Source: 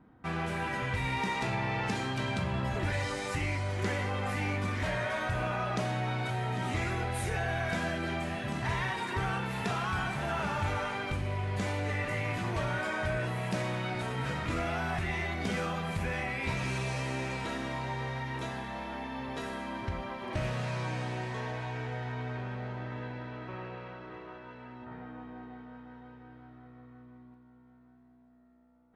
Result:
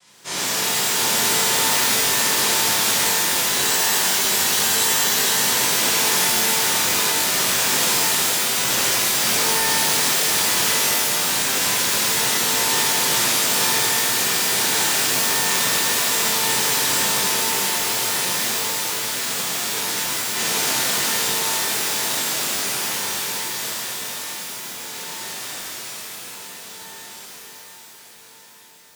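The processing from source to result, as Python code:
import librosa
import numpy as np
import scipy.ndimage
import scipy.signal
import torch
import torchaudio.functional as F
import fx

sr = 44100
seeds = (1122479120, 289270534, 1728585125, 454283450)

y = fx.noise_vocoder(x, sr, seeds[0], bands=1)
y = fx.spec_freeze(y, sr, seeds[1], at_s=3.45, hold_s=1.94)
y = fx.rev_shimmer(y, sr, seeds[2], rt60_s=1.9, semitones=12, shimmer_db=-2, drr_db=-10.0)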